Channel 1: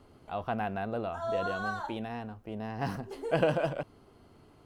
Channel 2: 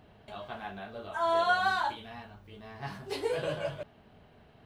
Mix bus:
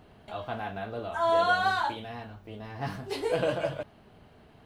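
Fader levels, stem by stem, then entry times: −4.0, +1.5 decibels; 0.00, 0.00 seconds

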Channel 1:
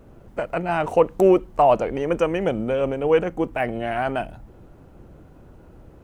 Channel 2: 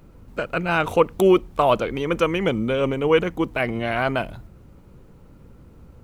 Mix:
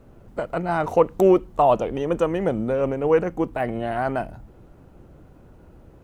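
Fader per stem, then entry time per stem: −2.0, −12.0 decibels; 0.00, 0.00 seconds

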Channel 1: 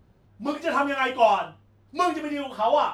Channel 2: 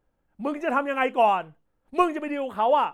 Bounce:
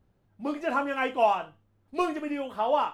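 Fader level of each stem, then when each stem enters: −10.0, −5.0 decibels; 0.00, 0.00 seconds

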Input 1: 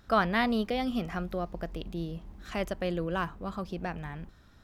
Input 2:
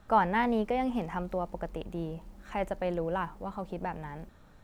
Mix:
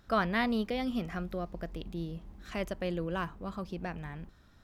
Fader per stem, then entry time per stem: −3.0, −18.0 decibels; 0.00, 0.00 seconds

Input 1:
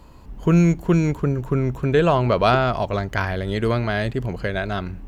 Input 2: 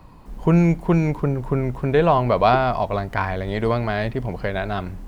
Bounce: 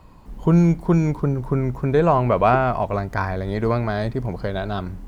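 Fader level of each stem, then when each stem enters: −8.0, −3.0 decibels; 0.00, 0.00 seconds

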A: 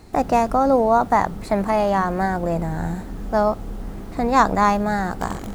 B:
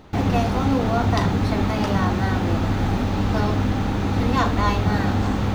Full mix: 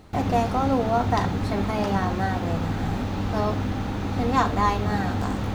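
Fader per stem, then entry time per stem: −8.5, −5.0 decibels; 0.00, 0.00 seconds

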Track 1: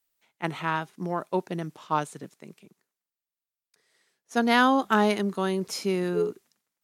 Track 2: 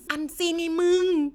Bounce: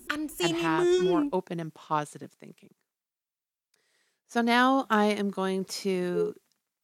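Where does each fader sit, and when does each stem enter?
−2.0, −3.0 decibels; 0.00, 0.00 seconds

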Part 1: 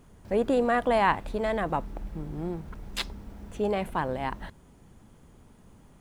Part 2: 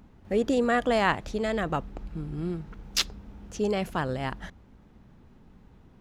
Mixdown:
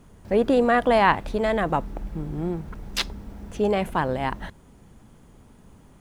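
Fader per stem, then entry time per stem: +3.0, −8.0 decibels; 0.00, 0.00 seconds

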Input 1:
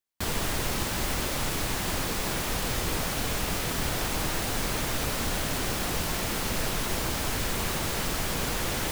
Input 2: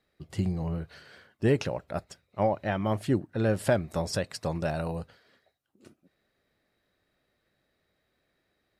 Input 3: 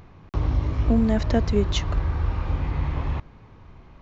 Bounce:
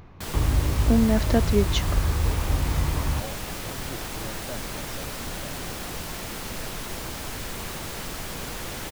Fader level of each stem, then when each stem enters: −4.5, −14.5, +0.5 decibels; 0.00, 0.80, 0.00 seconds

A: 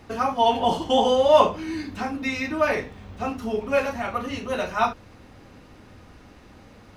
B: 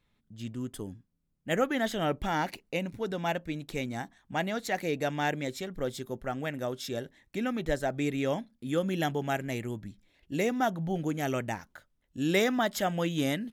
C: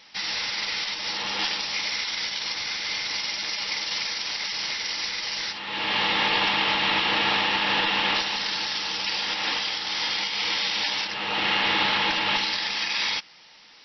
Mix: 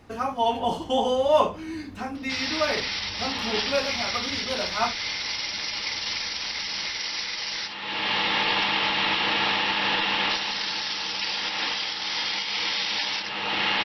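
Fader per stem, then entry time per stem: −4.0 dB, muted, −1.0 dB; 0.00 s, muted, 2.15 s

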